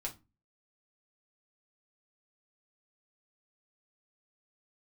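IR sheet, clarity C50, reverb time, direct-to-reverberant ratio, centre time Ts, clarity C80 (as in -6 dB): 16.0 dB, 0.25 s, -2.0 dB, 11 ms, 24.5 dB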